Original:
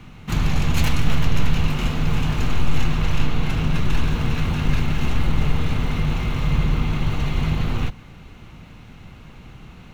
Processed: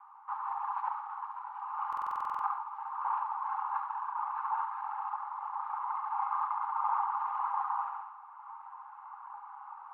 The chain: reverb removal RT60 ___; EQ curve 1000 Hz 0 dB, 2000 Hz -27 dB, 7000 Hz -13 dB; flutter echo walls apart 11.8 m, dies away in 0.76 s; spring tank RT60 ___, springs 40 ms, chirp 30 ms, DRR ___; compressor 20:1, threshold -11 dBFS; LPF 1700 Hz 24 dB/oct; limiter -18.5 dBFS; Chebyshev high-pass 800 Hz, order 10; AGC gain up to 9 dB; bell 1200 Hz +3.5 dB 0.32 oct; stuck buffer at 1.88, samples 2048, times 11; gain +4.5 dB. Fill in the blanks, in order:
1.3 s, 1.9 s, 13.5 dB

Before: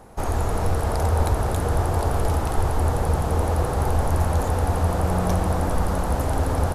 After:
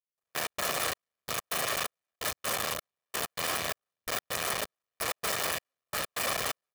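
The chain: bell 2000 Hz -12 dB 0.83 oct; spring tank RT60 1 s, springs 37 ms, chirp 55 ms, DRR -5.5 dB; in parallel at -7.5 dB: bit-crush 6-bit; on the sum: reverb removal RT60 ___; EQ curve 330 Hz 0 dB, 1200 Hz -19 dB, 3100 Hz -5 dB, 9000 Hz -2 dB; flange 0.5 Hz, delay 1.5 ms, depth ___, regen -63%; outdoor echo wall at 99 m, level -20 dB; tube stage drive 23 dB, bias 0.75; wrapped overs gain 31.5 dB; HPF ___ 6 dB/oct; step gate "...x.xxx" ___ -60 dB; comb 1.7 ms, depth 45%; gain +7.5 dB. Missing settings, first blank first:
0.82 s, 5.6 ms, 750 Hz, 129 bpm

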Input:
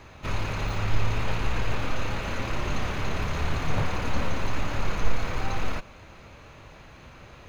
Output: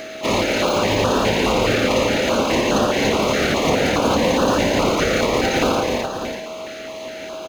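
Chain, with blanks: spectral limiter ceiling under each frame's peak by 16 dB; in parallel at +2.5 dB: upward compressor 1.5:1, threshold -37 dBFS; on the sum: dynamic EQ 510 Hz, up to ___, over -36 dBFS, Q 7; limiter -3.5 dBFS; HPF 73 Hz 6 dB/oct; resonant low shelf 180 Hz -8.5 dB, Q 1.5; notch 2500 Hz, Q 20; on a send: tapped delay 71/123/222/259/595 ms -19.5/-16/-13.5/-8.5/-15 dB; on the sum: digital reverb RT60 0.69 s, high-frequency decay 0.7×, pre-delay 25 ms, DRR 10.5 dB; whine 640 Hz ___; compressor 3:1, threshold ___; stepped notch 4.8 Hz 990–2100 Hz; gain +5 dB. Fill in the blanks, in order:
+5 dB, -34 dBFS, -19 dBFS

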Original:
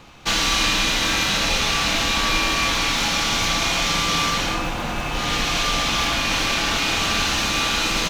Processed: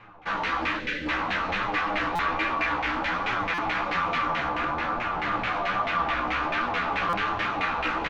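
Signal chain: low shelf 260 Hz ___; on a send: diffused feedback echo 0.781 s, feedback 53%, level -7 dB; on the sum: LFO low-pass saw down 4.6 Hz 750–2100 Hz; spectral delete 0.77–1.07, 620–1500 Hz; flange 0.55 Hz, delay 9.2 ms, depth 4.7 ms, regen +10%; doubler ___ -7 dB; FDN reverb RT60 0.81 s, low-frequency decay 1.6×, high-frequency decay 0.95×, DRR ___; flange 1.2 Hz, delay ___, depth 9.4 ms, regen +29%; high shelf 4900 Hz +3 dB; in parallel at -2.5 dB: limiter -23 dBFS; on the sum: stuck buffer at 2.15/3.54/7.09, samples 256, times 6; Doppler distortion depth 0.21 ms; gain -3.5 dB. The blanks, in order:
-5.5 dB, 16 ms, 13 dB, 7.9 ms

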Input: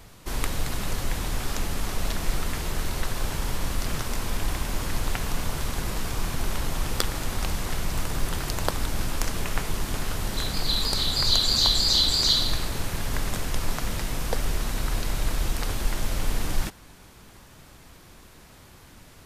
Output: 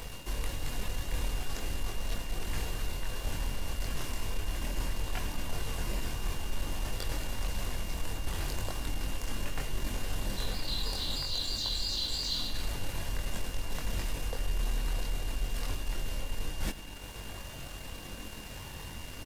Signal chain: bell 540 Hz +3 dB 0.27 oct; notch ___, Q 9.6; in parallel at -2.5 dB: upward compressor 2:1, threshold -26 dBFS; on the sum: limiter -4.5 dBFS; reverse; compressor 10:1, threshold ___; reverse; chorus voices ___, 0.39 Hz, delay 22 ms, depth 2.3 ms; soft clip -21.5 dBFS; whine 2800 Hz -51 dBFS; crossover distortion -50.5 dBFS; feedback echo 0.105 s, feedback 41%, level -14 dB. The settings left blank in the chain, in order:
1300 Hz, -26 dBFS, 6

